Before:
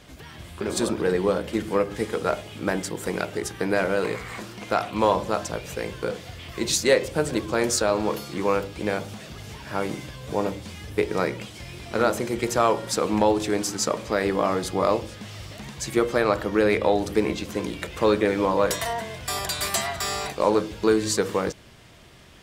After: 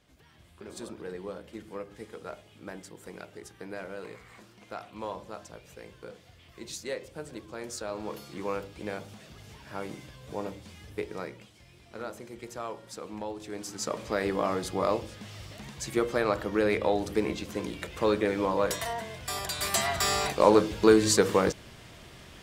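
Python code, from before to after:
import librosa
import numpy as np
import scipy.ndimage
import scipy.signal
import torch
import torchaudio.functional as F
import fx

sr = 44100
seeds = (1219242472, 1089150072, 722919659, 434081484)

y = fx.gain(x, sr, db=fx.line((7.63, -16.5), (8.25, -10.0), (10.9, -10.0), (11.57, -17.0), (13.38, -17.0), (14.02, -5.5), (19.53, -5.5), (19.96, 1.0)))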